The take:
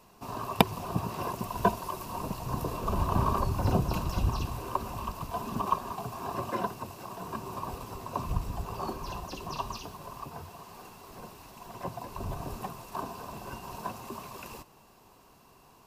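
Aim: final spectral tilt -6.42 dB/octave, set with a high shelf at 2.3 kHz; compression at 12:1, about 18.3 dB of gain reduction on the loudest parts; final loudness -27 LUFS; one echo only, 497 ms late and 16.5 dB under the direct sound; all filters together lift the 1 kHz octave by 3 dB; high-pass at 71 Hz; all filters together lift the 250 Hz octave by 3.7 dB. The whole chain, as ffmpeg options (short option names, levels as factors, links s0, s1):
-af "highpass=71,equalizer=f=250:t=o:g=5,equalizer=f=1000:t=o:g=4.5,highshelf=f=2300:g=-8,acompressor=threshold=0.0224:ratio=12,aecho=1:1:497:0.15,volume=4.22"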